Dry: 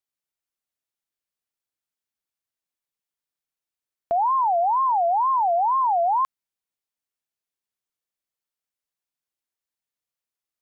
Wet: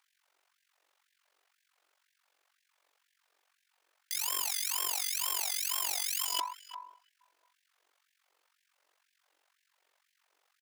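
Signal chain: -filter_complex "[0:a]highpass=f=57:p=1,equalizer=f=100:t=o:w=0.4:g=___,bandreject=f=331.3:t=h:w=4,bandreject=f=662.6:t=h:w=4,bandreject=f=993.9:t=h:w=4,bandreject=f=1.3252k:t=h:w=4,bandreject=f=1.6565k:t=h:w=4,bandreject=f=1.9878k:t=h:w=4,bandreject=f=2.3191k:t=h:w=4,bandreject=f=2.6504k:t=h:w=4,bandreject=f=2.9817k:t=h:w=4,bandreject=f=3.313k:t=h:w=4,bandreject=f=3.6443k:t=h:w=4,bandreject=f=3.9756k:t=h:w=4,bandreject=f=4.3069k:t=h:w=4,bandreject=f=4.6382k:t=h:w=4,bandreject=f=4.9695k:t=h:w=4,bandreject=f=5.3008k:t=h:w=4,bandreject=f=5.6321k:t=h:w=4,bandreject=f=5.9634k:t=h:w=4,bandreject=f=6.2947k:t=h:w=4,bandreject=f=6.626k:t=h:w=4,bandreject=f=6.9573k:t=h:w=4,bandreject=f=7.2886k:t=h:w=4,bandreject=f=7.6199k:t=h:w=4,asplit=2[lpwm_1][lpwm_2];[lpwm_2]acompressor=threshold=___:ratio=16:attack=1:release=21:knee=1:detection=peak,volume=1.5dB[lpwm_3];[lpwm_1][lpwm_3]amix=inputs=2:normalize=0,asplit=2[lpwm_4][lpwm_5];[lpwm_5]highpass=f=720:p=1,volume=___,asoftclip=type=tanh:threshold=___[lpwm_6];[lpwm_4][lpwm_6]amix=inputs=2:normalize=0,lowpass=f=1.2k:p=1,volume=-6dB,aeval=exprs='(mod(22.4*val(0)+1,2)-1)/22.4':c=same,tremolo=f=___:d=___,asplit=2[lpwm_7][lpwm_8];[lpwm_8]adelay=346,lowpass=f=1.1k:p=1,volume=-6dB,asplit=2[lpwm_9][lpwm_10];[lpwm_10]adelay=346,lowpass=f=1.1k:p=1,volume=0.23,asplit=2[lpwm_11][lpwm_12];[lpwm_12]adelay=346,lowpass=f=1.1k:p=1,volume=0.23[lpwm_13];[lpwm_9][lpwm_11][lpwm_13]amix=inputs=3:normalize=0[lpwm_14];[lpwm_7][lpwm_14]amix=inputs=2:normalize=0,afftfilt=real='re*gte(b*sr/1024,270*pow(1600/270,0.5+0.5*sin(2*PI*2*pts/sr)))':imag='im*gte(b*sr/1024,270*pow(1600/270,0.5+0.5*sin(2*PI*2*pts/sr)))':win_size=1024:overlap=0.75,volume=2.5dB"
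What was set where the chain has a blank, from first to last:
2.5, -31dB, 27dB, -13.5dB, 46, 0.889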